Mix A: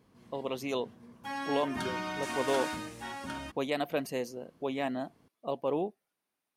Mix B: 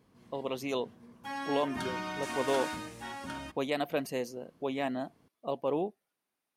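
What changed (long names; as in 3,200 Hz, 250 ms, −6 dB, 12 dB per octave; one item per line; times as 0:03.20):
background −3.0 dB
reverb: on, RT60 0.95 s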